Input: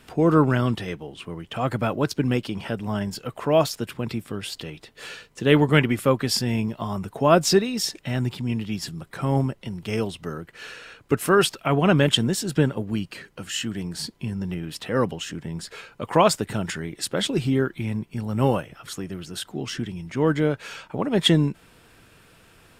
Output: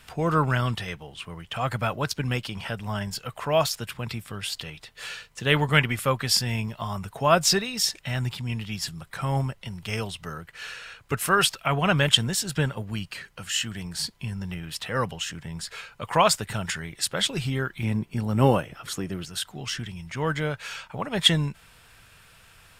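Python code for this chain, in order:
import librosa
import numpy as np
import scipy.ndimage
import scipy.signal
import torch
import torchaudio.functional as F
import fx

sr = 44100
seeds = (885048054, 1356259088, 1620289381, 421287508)

y = fx.peak_eq(x, sr, hz=310.0, db=fx.steps((0.0, -14.0), (17.83, -2.0), (19.25, -15.0)), octaves=1.7)
y = y * 10.0 ** (2.5 / 20.0)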